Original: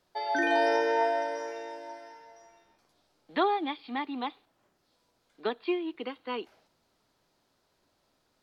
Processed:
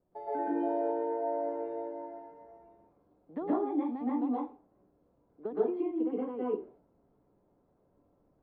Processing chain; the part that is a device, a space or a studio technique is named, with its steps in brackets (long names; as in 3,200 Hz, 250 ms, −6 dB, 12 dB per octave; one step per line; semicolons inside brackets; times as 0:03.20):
television next door (downward compressor 5 to 1, threshold −31 dBFS, peak gain reduction 9.5 dB; low-pass filter 510 Hz 12 dB per octave; convolution reverb RT60 0.35 s, pre-delay 115 ms, DRR −8 dB)